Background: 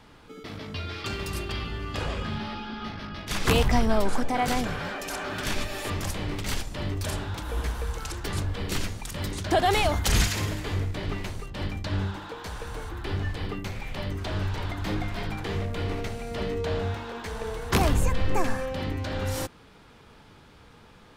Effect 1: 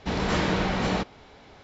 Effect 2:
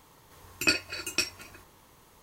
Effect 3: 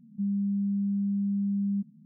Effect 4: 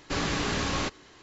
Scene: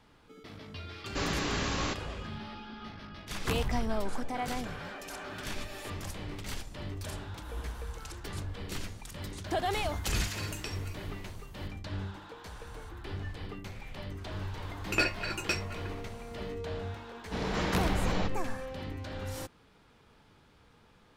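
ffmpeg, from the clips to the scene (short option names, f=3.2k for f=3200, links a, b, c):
-filter_complex "[2:a]asplit=2[a][b];[0:a]volume=-9dB[c];[a]acompressor=threshold=-35dB:ratio=6:attack=3.2:release=140:knee=1:detection=peak[d];[b]asplit=2[e][f];[f]highpass=f=720:p=1,volume=17dB,asoftclip=type=tanh:threshold=-7dB[g];[e][g]amix=inputs=2:normalize=0,lowpass=f=1k:p=1,volume=-6dB[h];[4:a]atrim=end=1.22,asetpts=PTS-STARTPTS,volume=-3.5dB,afade=t=in:d=0.004:c=hsin,afade=t=out:st=1.216:d=0.004:c=hsin,adelay=1050[i];[d]atrim=end=2.22,asetpts=PTS-STARTPTS,volume=-2.5dB,afade=t=in:d=0.004:c=hsin,afade=t=out:st=2.216:d=0.004:c=hsin,adelay=417186S[j];[h]atrim=end=2.22,asetpts=PTS-STARTPTS,volume=-1.5dB,afade=t=in:d=0.004:c=hsin,afade=t=out:st=2.216:d=0.004:c=hsin,adelay=14310[k];[1:a]atrim=end=1.63,asetpts=PTS-STARTPTS,volume=-7dB,afade=t=in:d=0.1,afade=t=out:st=1.53:d=0.1,adelay=17250[l];[c][i][j][k][l]amix=inputs=5:normalize=0"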